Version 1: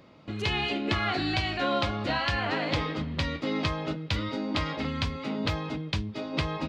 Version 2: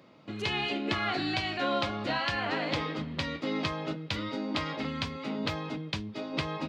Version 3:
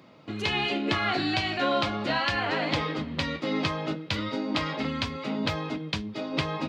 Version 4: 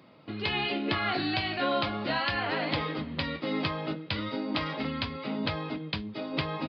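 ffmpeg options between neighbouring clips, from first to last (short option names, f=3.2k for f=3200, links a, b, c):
-af "highpass=130,volume=-2dB"
-af "flanger=delay=0.8:depth=8.8:regen=-67:speed=0.37:shape=triangular,volume=8dB"
-af "aresample=11025,aresample=44100,volume=-2.5dB"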